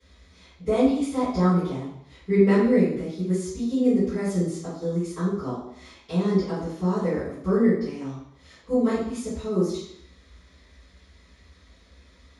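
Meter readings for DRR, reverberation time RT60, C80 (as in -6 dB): -19.0 dB, 0.70 s, 5.5 dB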